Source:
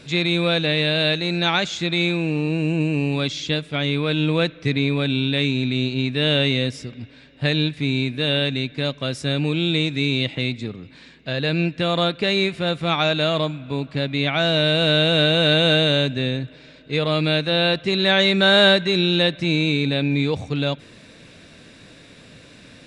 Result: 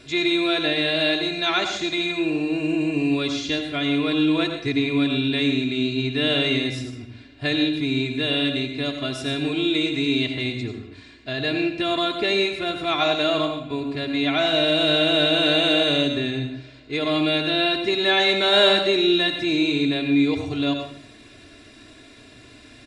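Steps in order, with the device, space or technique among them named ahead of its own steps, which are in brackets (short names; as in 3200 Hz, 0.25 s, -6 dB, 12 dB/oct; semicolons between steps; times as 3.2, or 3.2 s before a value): microphone above a desk (comb 2.9 ms, depth 82%; reverb RT60 0.60 s, pre-delay 76 ms, DRR 5.5 dB); gain -4 dB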